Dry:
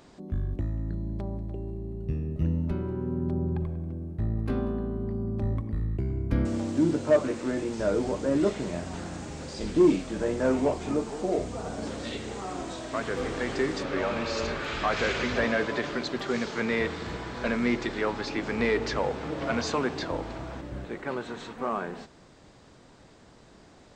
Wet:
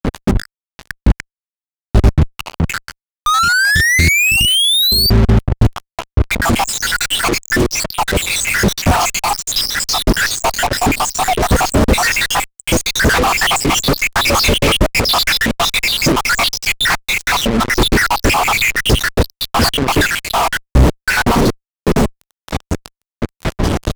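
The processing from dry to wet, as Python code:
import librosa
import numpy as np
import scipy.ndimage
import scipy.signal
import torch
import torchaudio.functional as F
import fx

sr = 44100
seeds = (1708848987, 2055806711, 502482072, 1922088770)

y = fx.spec_dropout(x, sr, seeds[0], share_pct=83)
y = fx.over_compress(y, sr, threshold_db=-37.0, ratio=-0.5)
y = fx.spec_paint(y, sr, seeds[1], shape='rise', start_s=3.26, length_s=1.84, low_hz=1200.0, high_hz=4700.0, level_db=-35.0)
y = fx.fuzz(y, sr, gain_db=58.0, gate_db=-51.0)
y = fx.low_shelf(y, sr, hz=140.0, db=11.0)
y = F.gain(torch.from_numpy(y), 1.5).numpy()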